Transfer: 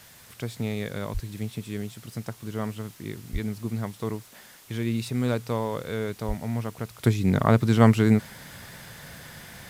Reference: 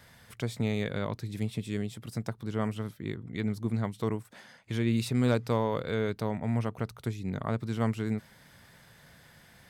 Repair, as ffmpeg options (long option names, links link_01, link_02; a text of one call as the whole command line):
ffmpeg -i in.wav -filter_complex "[0:a]asplit=3[link_01][link_02][link_03];[link_01]afade=type=out:start_time=1.13:duration=0.02[link_04];[link_02]highpass=frequency=140:width=0.5412,highpass=frequency=140:width=1.3066,afade=type=in:start_time=1.13:duration=0.02,afade=type=out:start_time=1.25:duration=0.02[link_05];[link_03]afade=type=in:start_time=1.25:duration=0.02[link_06];[link_04][link_05][link_06]amix=inputs=3:normalize=0,asplit=3[link_07][link_08][link_09];[link_07]afade=type=out:start_time=3.32:duration=0.02[link_10];[link_08]highpass=frequency=140:width=0.5412,highpass=frequency=140:width=1.3066,afade=type=in:start_time=3.32:duration=0.02,afade=type=out:start_time=3.44:duration=0.02[link_11];[link_09]afade=type=in:start_time=3.44:duration=0.02[link_12];[link_10][link_11][link_12]amix=inputs=3:normalize=0,asplit=3[link_13][link_14][link_15];[link_13]afade=type=out:start_time=6.27:duration=0.02[link_16];[link_14]highpass=frequency=140:width=0.5412,highpass=frequency=140:width=1.3066,afade=type=in:start_time=6.27:duration=0.02,afade=type=out:start_time=6.39:duration=0.02[link_17];[link_15]afade=type=in:start_time=6.39:duration=0.02[link_18];[link_16][link_17][link_18]amix=inputs=3:normalize=0,afwtdn=0.0028,asetnsamples=nb_out_samples=441:pad=0,asendcmd='7.03 volume volume -12dB',volume=0dB" out.wav